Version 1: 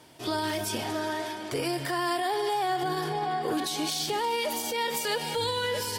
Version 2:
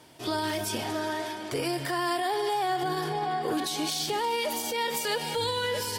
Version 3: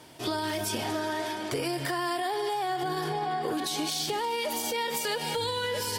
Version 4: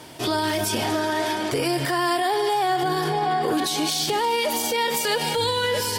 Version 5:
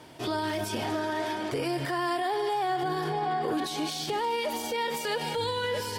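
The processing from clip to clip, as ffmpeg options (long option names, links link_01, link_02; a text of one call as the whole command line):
ffmpeg -i in.wav -af anull out.wav
ffmpeg -i in.wav -af "acompressor=threshold=-30dB:ratio=6,volume=3dB" out.wav
ffmpeg -i in.wav -af "alimiter=limit=-23.5dB:level=0:latency=1,volume=8.5dB" out.wav
ffmpeg -i in.wav -af "highshelf=frequency=4300:gain=-8,volume=-6dB" out.wav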